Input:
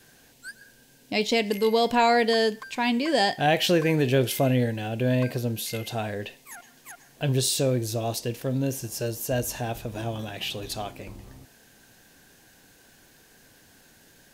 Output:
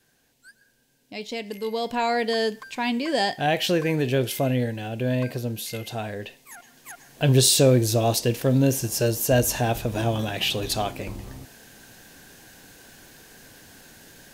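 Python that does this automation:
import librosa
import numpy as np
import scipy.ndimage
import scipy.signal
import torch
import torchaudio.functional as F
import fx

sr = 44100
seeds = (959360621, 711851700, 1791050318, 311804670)

y = fx.gain(x, sr, db=fx.line((1.16, -10.0), (2.48, -1.0), (6.53, -1.0), (7.4, 7.0)))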